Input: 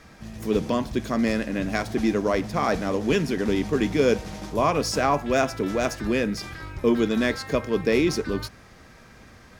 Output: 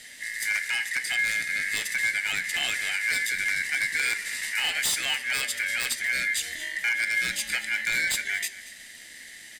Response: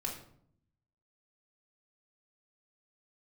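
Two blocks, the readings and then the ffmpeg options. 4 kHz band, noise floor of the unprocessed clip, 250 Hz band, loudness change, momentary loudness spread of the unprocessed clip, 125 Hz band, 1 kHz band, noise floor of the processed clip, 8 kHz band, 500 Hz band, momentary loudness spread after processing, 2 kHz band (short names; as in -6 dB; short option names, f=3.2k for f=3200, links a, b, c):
+6.0 dB, -50 dBFS, -28.0 dB, -1.0 dB, 7 LU, under -20 dB, -14.0 dB, -46 dBFS, +8.0 dB, -26.0 dB, 7 LU, +8.5 dB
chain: -filter_complex "[0:a]lowpass=f=11k:w=0.5412,lowpass=f=11k:w=1.3066,highshelf=f=5.1k:t=q:w=1.5:g=13,aecho=1:1:0.9:0.37,aeval=exprs='val(0)*sin(2*PI*1900*n/s)':c=same,firequalizer=gain_entry='entry(120,0);entry(210,6);entry(300,1);entry(1100,-8);entry(1800,7)':delay=0.05:min_phase=1,acompressor=threshold=-25dB:ratio=2,bandreject=f=198.2:t=h:w=4,bandreject=f=396.4:t=h:w=4,bandreject=f=594.6:t=h:w=4,bandreject=f=792.8:t=h:w=4,bandreject=f=991:t=h:w=4,bandreject=f=1.1892k:t=h:w=4,bandreject=f=1.3874k:t=h:w=4,bandreject=f=1.5856k:t=h:w=4,bandreject=f=1.7838k:t=h:w=4,bandreject=f=1.982k:t=h:w=4,bandreject=f=2.1802k:t=h:w=4,bandreject=f=2.3784k:t=h:w=4,bandreject=f=2.5766k:t=h:w=4,bandreject=f=2.7748k:t=h:w=4,bandreject=f=2.973k:t=h:w=4,bandreject=f=3.1712k:t=h:w=4,bandreject=f=3.3694k:t=h:w=4,bandreject=f=3.5676k:t=h:w=4,bandreject=f=3.7658k:t=h:w=4,bandreject=f=3.964k:t=h:w=4,bandreject=f=4.1622k:t=h:w=4,bandreject=f=4.3604k:t=h:w=4,bandreject=f=4.5586k:t=h:w=4,bandreject=f=4.7568k:t=h:w=4,bandreject=f=4.955k:t=h:w=4,bandreject=f=5.1532k:t=h:w=4,bandreject=f=5.3514k:t=h:w=4,bandreject=f=5.5496k:t=h:w=4,bandreject=f=5.7478k:t=h:w=4,bandreject=f=5.946k:t=h:w=4,bandreject=f=6.1442k:t=h:w=4,bandreject=f=6.3424k:t=h:w=4,bandreject=f=6.5406k:t=h:w=4,bandreject=f=6.7388k:t=h:w=4,bandreject=f=6.937k:t=h:w=4,bandreject=f=7.1352k:t=h:w=4,bandreject=f=7.3334k:t=h:w=4,bandreject=f=7.5316k:t=h:w=4,aeval=exprs='0.168*(abs(mod(val(0)/0.168+3,4)-2)-1)':c=same,aecho=1:1:231:0.133,asplit=2[a][b];[1:a]atrim=start_sample=2205,asetrate=88200,aresample=44100[c];[b][c]afir=irnorm=-1:irlink=0,volume=-6.5dB[d];[a][d]amix=inputs=2:normalize=0,volume=-3.5dB"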